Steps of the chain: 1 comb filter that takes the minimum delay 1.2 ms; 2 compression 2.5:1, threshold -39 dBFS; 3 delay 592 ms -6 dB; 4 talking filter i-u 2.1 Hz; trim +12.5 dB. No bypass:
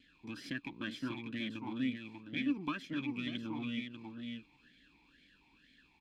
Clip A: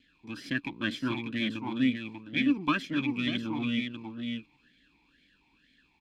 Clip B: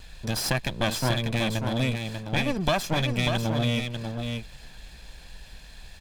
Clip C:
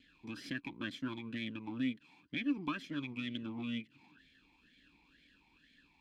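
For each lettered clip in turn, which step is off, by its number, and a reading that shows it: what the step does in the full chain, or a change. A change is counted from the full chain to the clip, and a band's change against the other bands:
2, mean gain reduction 5.0 dB; 4, 250 Hz band -9.5 dB; 3, momentary loudness spread change -2 LU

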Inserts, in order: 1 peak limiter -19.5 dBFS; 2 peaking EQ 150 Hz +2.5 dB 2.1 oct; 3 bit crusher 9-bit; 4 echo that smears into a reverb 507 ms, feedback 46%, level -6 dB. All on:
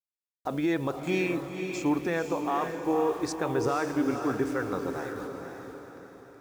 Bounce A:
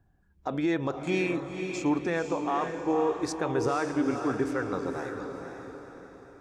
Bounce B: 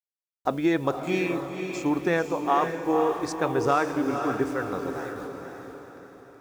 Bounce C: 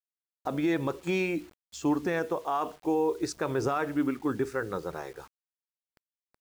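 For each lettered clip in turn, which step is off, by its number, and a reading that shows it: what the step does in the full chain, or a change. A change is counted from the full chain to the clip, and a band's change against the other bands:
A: 3, distortion -29 dB; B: 1, crest factor change +1.5 dB; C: 4, echo-to-direct -5.0 dB to none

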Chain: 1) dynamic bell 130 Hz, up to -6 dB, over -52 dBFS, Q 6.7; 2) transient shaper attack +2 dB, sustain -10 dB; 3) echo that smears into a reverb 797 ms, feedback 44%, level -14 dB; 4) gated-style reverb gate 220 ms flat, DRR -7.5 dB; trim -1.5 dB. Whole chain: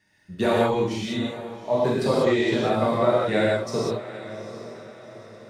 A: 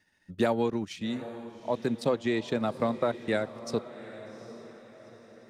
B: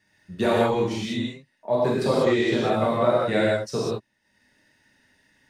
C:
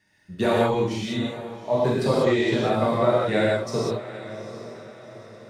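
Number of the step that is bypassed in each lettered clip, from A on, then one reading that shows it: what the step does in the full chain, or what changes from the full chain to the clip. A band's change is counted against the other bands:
4, momentary loudness spread change +2 LU; 3, momentary loudness spread change -7 LU; 1, 125 Hz band +2.0 dB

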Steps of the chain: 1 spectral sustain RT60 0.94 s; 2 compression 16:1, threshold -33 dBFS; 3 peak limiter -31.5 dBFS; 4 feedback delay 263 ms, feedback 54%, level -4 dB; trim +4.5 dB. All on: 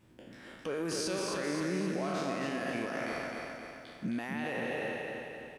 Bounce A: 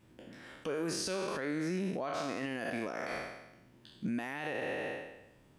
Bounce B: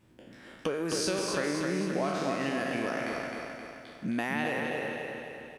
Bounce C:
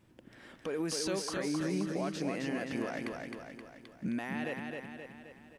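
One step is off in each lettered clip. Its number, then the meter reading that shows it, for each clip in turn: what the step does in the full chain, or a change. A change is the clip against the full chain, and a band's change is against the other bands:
4, echo-to-direct -2.5 dB to none; 3, mean gain reduction 2.0 dB; 1, 1 kHz band -4.0 dB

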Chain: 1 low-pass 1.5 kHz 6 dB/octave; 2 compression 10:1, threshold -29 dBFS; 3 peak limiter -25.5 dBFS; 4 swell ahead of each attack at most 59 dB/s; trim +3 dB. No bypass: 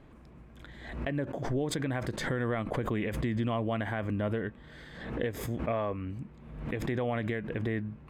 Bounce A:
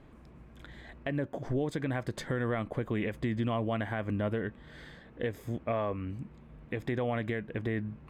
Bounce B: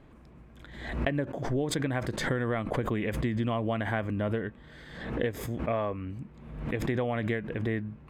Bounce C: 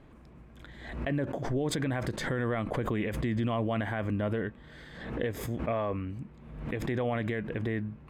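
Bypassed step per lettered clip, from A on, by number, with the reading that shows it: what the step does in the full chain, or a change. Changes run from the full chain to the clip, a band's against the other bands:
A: 4, crest factor change -3.5 dB; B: 3, crest factor change +2.5 dB; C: 2, mean gain reduction 3.5 dB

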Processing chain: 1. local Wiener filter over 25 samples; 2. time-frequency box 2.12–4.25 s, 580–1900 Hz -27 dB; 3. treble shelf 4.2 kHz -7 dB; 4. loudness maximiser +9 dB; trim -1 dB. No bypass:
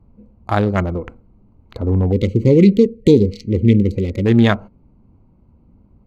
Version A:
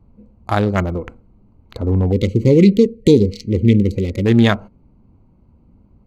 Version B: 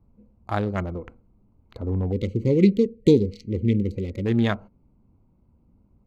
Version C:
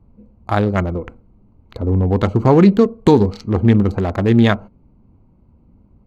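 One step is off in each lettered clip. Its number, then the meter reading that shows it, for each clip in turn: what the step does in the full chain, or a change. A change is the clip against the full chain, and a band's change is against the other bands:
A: 3, 4 kHz band +2.5 dB; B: 4, crest factor change +5.0 dB; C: 2, 1 kHz band +5.0 dB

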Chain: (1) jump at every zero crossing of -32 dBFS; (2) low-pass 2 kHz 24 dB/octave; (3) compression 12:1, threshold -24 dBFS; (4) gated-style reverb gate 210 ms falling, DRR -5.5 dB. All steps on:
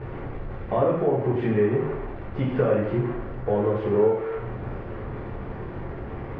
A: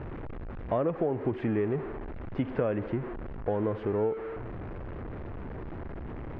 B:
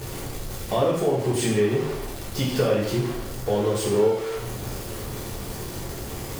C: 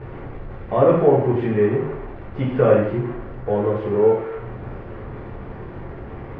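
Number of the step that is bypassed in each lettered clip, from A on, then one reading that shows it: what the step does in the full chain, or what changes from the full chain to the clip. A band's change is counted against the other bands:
4, momentary loudness spread change -1 LU; 2, 2 kHz band +3.0 dB; 3, crest factor change +2.5 dB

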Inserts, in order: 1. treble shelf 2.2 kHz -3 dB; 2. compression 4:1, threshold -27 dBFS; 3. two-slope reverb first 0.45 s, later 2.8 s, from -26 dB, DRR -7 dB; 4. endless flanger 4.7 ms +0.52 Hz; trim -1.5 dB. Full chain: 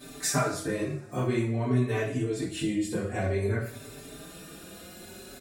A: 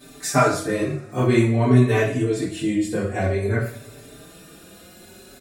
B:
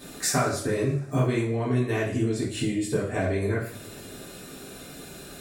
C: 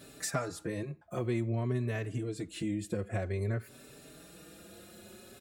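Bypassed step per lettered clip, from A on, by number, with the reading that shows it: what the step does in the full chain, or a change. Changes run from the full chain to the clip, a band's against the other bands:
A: 2, crest factor change +2.0 dB; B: 4, momentary loudness spread change -1 LU; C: 3, momentary loudness spread change +2 LU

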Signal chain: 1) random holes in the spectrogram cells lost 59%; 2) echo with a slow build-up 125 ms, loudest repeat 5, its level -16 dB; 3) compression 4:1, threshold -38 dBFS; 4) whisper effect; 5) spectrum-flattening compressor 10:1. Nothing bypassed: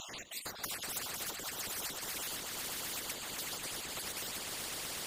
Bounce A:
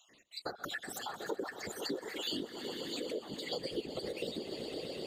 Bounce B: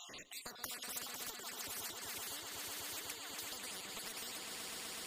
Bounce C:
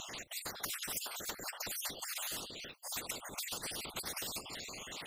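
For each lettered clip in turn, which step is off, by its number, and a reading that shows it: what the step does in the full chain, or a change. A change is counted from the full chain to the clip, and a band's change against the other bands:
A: 5, 8 kHz band -12.5 dB; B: 4, 125 Hz band -3.5 dB; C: 2, momentary loudness spread change +3 LU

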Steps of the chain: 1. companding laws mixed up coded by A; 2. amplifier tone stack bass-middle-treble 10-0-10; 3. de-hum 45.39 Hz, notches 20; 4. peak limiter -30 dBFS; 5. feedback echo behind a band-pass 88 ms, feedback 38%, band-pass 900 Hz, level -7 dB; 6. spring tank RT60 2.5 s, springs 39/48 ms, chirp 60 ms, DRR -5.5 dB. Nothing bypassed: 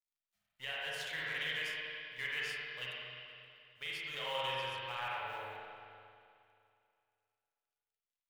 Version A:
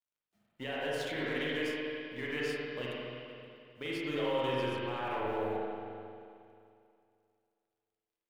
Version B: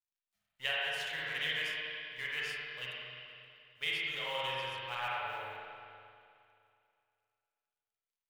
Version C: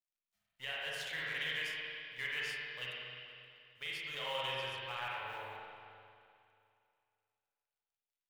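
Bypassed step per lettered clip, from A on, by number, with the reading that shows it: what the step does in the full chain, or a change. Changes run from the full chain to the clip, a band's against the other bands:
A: 2, 250 Hz band +19.5 dB; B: 4, crest factor change +3.0 dB; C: 5, 1 kHz band -2.0 dB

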